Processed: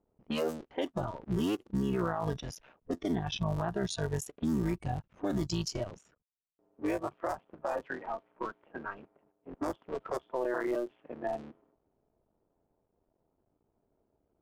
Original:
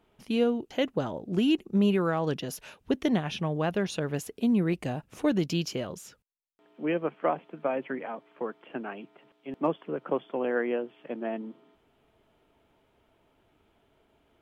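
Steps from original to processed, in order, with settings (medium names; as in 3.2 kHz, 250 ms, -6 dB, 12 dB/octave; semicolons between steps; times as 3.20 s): cycle switcher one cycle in 3, muted; spectral noise reduction 13 dB; dynamic bell 2.2 kHz, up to -5 dB, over -52 dBFS, Q 1.5; in parallel at +1 dB: compression, threshold -37 dBFS, peak gain reduction 15 dB; on the sum: peak limiter -23 dBFS, peak gain reduction 10 dB; level-controlled noise filter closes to 700 Hz, open at -28.5 dBFS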